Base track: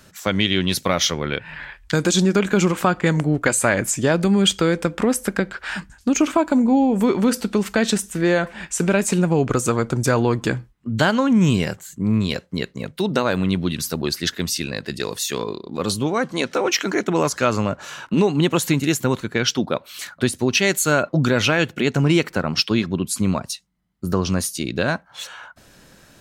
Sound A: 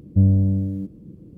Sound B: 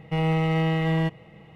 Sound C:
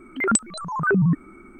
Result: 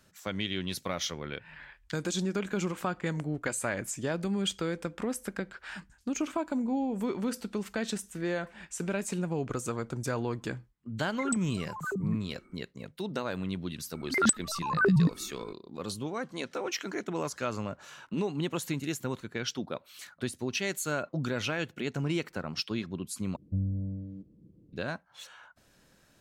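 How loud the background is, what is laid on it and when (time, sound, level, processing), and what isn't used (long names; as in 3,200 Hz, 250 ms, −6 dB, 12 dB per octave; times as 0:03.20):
base track −14 dB
0:10.97: mix in C −14 dB + all-pass dispersion lows, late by 43 ms, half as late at 1,900 Hz
0:13.94: mix in C −4.5 dB
0:23.36: overwrite with A −15 dB + treble cut that deepens with the level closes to 390 Hz, closed at −12 dBFS
not used: B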